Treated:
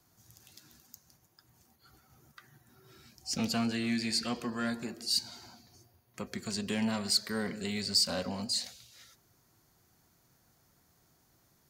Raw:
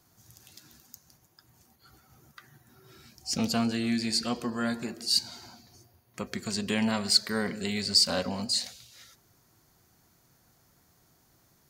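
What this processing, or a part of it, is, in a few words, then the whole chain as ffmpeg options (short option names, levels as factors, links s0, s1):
one-band saturation: -filter_complex "[0:a]asettb=1/sr,asplit=3[s0][s1][s2];[s0]atrim=end=3.374[s3];[s1]atrim=start=3.37:end=4.7,asetpts=PTS-STARTPTS,afade=t=in:d=0.004:c=qsin,afade=t=out:st=1.326:d=0.004:c=qsin,equalizer=f=2100:t=o:w=1.4:g=5[s4];[s2]atrim=start=4.696[s5];[s3][s4]acrossfade=d=0.004:c1=hsin:c2=qsin[s6];[s6][s5]acrossfade=d=0.004:c1=qsin:c2=hsin,acrossover=split=290|4800[s7][s8][s9];[s8]asoftclip=type=tanh:threshold=0.0562[s10];[s7][s10][s9]amix=inputs=3:normalize=0,volume=0.668"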